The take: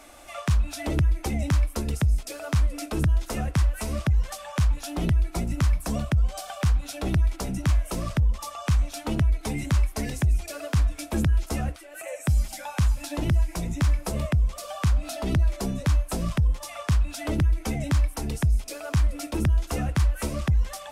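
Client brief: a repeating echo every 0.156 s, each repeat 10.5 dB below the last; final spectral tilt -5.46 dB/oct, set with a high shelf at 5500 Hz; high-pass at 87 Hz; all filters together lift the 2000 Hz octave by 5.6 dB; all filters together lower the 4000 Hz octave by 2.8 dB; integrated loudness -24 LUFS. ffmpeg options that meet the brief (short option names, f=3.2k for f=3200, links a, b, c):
-af "highpass=87,equalizer=f=2k:t=o:g=8.5,equalizer=f=4k:t=o:g=-8.5,highshelf=f=5.5k:g=3.5,aecho=1:1:156|312|468:0.299|0.0896|0.0269,volume=5dB"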